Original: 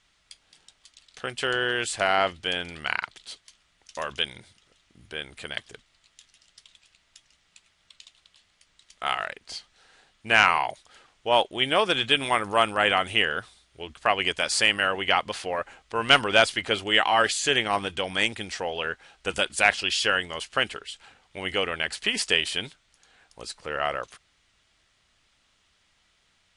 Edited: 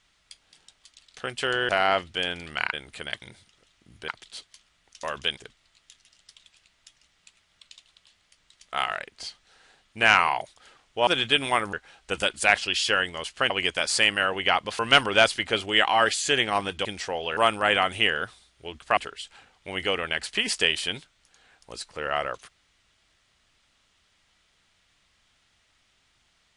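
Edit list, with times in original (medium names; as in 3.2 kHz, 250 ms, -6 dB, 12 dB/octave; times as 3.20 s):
1.69–1.98 s: delete
3.02–4.31 s: swap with 5.17–5.66 s
11.36–11.86 s: delete
12.52–14.12 s: swap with 18.89–20.66 s
15.41–15.97 s: delete
18.03–18.37 s: delete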